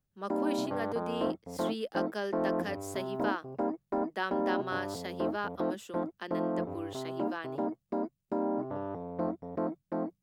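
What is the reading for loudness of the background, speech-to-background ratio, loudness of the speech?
-35.0 LUFS, -4.0 dB, -39.0 LUFS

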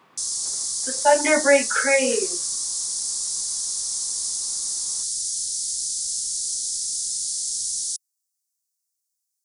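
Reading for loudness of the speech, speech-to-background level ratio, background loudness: -20.0 LUFS, 4.0 dB, -24.0 LUFS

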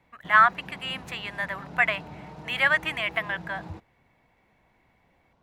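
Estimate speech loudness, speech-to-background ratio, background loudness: -25.0 LUFS, 18.5 dB, -43.5 LUFS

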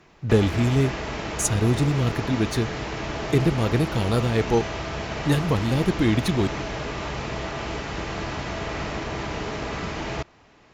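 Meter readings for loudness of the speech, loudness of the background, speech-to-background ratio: -23.5 LUFS, -30.5 LUFS, 7.0 dB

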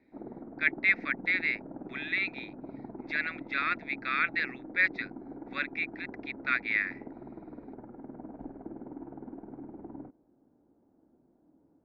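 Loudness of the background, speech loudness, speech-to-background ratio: -45.0 LUFS, -30.5 LUFS, 14.5 dB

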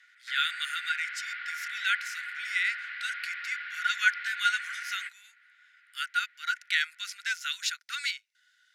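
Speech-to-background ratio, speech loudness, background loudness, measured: 6.0 dB, -31.0 LUFS, -37.0 LUFS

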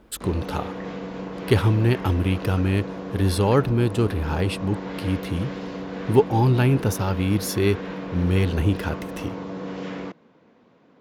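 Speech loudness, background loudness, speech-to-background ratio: -23.0 LUFS, -33.0 LUFS, 10.0 dB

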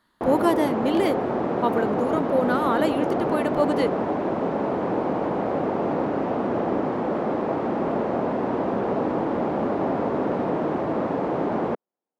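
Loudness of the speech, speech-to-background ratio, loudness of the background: -25.0 LUFS, 0.5 dB, -25.5 LUFS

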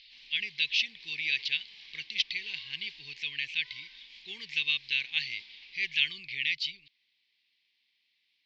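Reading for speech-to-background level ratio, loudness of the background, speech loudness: 18.5 dB, -49.5 LUFS, -31.0 LUFS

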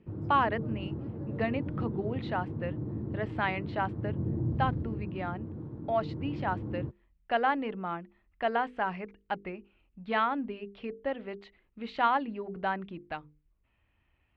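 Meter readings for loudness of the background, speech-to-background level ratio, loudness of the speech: -37.0 LUFS, 3.5 dB, -33.5 LUFS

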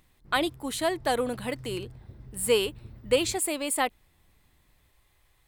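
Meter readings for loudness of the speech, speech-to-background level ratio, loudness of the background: -28.5 LUFS, 19.0 dB, -47.5 LUFS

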